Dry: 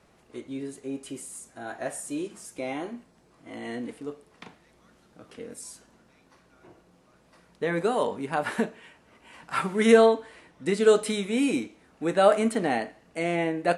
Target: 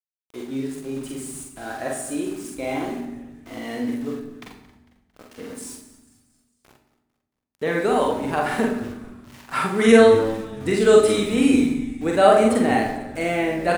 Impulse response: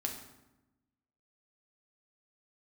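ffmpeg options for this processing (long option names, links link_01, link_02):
-filter_complex "[0:a]aeval=exprs='val(0)*gte(abs(val(0)),0.00596)':channel_layout=same,asplit=5[link_01][link_02][link_03][link_04][link_05];[link_02]adelay=225,afreqshift=-120,volume=-17.5dB[link_06];[link_03]adelay=450,afreqshift=-240,volume=-23.3dB[link_07];[link_04]adelay=675,afreqshift=-360,volume=-29.2dB[link_08];[link_05]adelay=900,afreqshift=-480,volume=-35dB[link_09];[link_01][link_06][link_07][link_08][link_09]amix=inputs=5:normalize=0,asplit=2[link_10][link_11];[1:a]atrim=start_sample=2205,adelay=45[link_12];[link_11][link_12]afir=irnorm=-1:irlink=0,volume=-1.5dB[link_13];[link_10][link_13]amix=inputs=2:normalize=0,volume=2.5dB"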